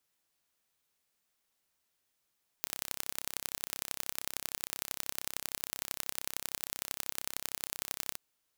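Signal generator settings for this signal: pulse train 33 per s, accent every 3, -6 dBFS 5.52 s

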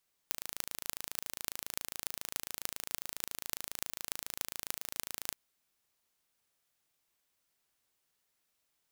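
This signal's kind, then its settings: pulse train 27.3 per s, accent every 8, -5.5 dBFS 5.05 s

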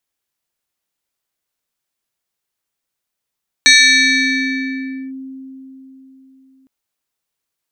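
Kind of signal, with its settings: FM tone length 3.01 s, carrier 265 Hz, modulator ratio 7.67, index 2.6, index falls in 1.46 s linear, decay 4.00 s, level -4 dB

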